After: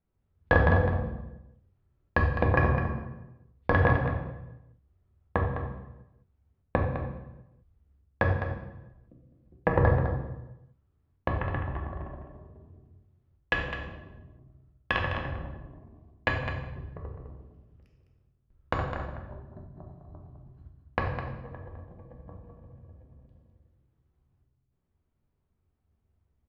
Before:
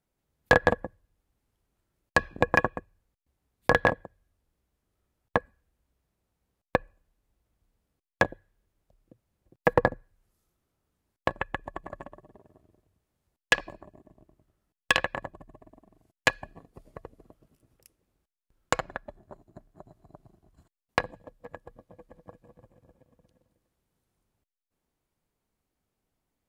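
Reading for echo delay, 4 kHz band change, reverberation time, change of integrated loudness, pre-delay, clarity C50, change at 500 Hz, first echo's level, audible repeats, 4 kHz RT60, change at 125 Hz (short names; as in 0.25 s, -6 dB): 0.207 s, -8.0 dB, 1.0 s, -1.5 dB, 3 ms, 3.0 dB, -1.0 dB, -9.0 dB, 1, 0.80 s, +11.5 dB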